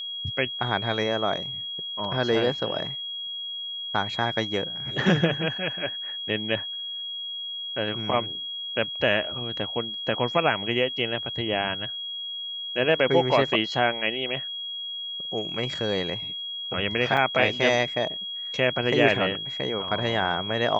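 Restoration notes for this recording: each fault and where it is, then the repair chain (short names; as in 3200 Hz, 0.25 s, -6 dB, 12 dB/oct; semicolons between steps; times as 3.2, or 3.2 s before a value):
tone 3300 Hz -31 dBFS
17.17 gap 4.3 ms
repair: notch 3300 Hz, Q 30; interpolate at 17.17, 4.3 ms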